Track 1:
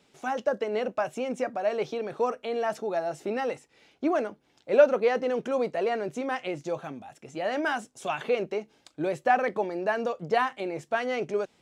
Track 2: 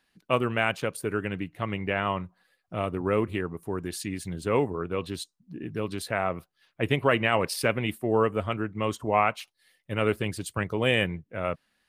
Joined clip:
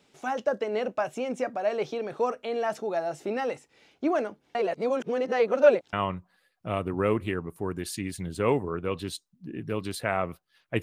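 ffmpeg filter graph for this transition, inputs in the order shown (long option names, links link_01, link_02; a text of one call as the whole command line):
ffmpeg -i cue0.wav -i cue1.wav -filter_complex "[0:a]apad=whole_dur=10.82,atrim=end=10.82,asplit=2[link_01][link_02];[link_01]atrim=end=4.552[link_03];[link_02]atrim=start=4.548:end=5.932,asetpts=PTS-STARTPTS,areverse[link_04];[1:a]atrim=start=1.998:end=6.89[link_05];[link_03][link_04]acrossfade=duration=0.004:curve1=hsin:curve2=hsin[link_06];[link_06][link_05]acrossfade=duration=0.004:curve1=hsin:curve2=hsin" out.wav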